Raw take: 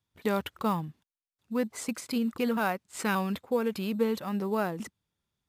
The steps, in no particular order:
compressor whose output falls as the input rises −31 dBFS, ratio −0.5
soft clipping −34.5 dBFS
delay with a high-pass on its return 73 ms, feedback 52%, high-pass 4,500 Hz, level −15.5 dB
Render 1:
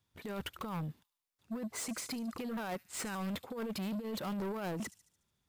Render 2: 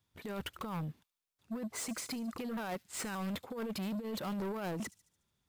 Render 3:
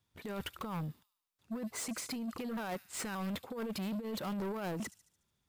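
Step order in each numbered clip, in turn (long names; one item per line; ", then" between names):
compressor whose output falls as the input rises, then delay with a high-pass on its return, then soft clipping
compressor whose output falls as the input rises, then soft clipping, then delay with a high-pass on its return
delay with a high-pass on its return, then compressor whose output falls as the input rises, then soft clipping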